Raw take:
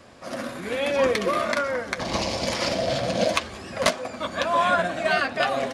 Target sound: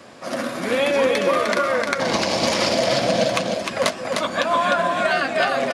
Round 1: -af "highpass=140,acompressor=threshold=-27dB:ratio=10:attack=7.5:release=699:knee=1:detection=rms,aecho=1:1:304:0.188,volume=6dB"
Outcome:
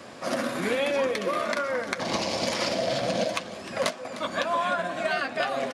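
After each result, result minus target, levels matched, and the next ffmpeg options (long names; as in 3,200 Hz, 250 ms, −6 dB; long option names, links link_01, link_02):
echo-to-direct −10.5 dB; downward compressor: peak gain reduction +6.5 dB
-af "highpass=140,acompressor=threshold=-27dB:ratio=10:attack=7.5:release=699:knee=1:detection=rms,aecho=1:1:304:0.631,volume=6dB"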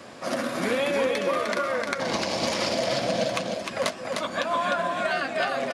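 downward compressor: peak gain reduction +6.5 dB
-af "highpass=140,acompressor=threshold=-20dB:ratio=10:attack=7.5:release=699:knee=1:detection=rms,aecho=1:1:304:0.631,volume=6dB"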